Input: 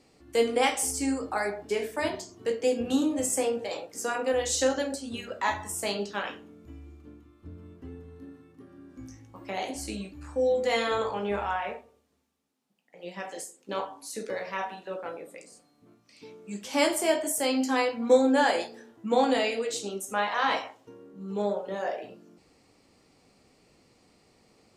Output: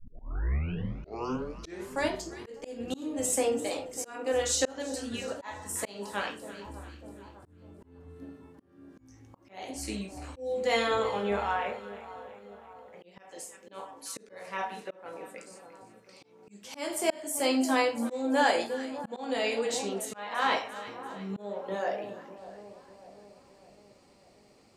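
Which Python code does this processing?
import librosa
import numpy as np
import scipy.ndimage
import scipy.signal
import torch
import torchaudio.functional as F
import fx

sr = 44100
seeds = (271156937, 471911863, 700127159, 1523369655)

y = fx.tape_start_head(x, sr, length_s=2.12)
y = fx.echo_split(y, sr, split_hz=1200.0, low_ms=598, high_ms=342, feedback_pct=52, wet_db=-15)
y = fx.auto_swell(y, sr, attack_ms=360.0)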